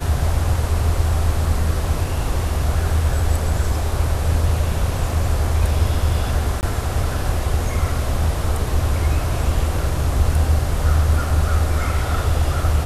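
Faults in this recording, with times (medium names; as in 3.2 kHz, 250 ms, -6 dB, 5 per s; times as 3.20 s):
6.61–6.63 s: dropout 19 ms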